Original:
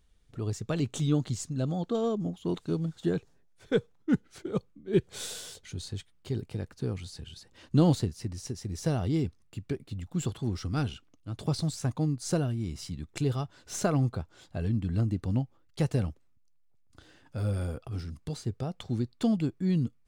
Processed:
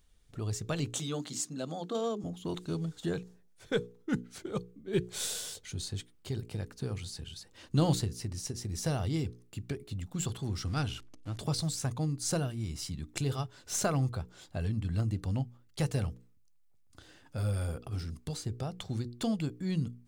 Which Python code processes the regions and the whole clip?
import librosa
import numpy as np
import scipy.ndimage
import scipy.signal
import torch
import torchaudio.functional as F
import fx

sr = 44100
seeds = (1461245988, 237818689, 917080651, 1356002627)

y = fx.chain(x, sr, fx.highpass(hz=190.0, slope=24),
    fx.hum_notches(base_hz=60, count=7), at=(0.94, 2.24))
y = fx.chain(y, sr, fx.zero_step(step_db=-47.0),
    fx.lowpass(hz=9500.0, slope=12), at=(10.67, 11.38))
y = fx.high_shelf(y, sr, hz=5600.0, db=6.0)
y = fx.hum_notches(y, sr, base_hz=60, count=8)
y = fx.dynamic_eq(y, sr, hz=280.0, q=0.79, threshold_db=-39.0, ratio=4.0, max_db=-6)